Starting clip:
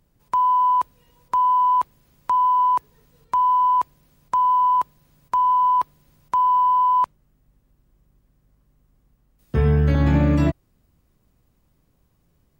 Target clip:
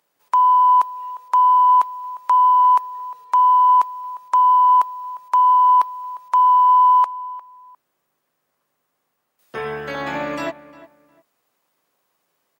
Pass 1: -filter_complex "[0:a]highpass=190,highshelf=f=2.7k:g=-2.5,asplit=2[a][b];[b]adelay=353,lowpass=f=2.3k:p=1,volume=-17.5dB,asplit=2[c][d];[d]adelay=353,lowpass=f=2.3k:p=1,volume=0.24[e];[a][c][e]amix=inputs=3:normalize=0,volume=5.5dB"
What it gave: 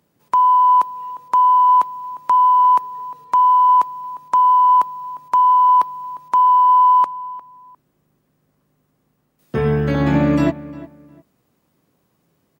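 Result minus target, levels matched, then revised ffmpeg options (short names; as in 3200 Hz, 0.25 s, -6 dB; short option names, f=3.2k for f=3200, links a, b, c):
250 Hz band +14.5 dB
-filter_complex "[0:a]highpass=690,highshelf=f=2.7k:g=-2.5,asplit=2[a][b];[b]adelay=353,lowpass=f=2.3k:p=1,volume=-17.5dB,asplit=2[c][d];[d]adelay=353,lowpass=f=2.3k:p=1,volume=0.24[e];[a][c][e]amix=inputs=3:normalize=0,volume=5.5dB"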